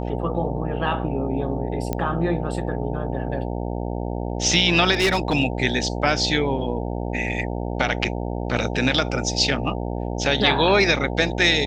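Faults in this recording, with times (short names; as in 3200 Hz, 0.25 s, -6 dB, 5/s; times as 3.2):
buzz 60 Hz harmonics 15 -27 dBFS
1.93 pop -11 dBFS
4.93–5.35 clipped -14.5 dBFS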